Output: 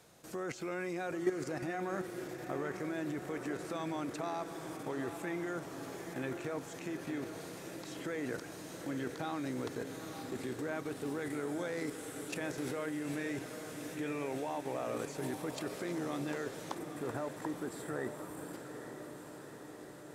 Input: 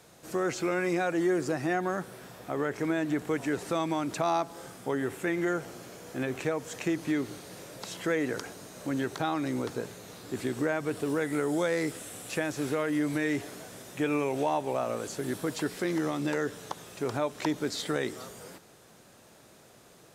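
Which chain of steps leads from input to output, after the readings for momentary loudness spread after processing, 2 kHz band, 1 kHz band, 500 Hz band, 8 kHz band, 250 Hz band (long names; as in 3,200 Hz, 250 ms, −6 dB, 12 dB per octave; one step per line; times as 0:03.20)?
7 LU, −8.0 dB, −8.5 dB, −8.0 dB, −7.0 dB, −8.0 dB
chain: gain on a spectral selection 0:16.77–0:18.53, 2,000–7,200 Hz −16 dB
output level in coarse steps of 12 dB
feedback delay with all-pass diffusion 850 ms, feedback 67%, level −8 dB
level −2 dB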